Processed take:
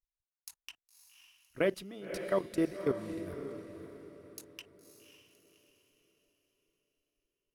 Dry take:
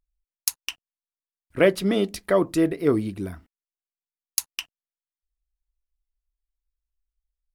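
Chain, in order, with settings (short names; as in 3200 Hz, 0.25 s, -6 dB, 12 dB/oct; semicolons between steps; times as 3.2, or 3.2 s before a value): level quantiser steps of 19 dB; diffused feedback echo 0.558 s, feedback 41%, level -8.5 dB; gain -7.5 dB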